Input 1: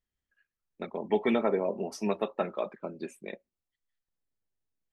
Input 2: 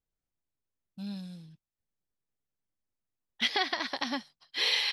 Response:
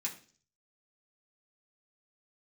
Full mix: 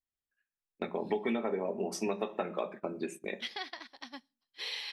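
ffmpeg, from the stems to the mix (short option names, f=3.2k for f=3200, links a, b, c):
-filter_complex "[0:a]volume=1dB,asplit=3[a][b][c];[b]volume=-5dB[d];[1:a]volume=-12dB,asplit=2[e][f];[f]volume=-12.5dB[g];[c]apad=whole_len=217065[h];[e][h]sidechaincompress=threshold=-39dB:ratio=8:attack=16:release=110[i];[2:a]atrim=start_sample=2205[j];[d][g]amix=inputs=2:normalize=0[k];[k][j]afir=irnorm=-1:irlink=0[l];[a][i][l]amix=inputs=3:normalize=0,agate=range=-13dB:threshold=-43dB:ratio=16:detection=peak,acompressor=threshold=-29dB:ratio=6"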